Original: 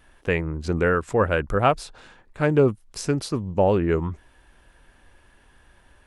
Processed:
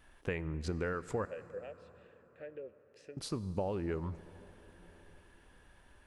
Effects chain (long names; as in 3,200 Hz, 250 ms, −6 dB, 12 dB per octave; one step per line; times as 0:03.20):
downward compressor 6 to 1, threshold −26 dBFS, peak gain reduction 12.5 dB
0:01.25–0:03.17: formant filter e
dense smooth reverb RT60 4.6 s, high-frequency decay 0.6×, DRR 15 dB
level −6.5 dB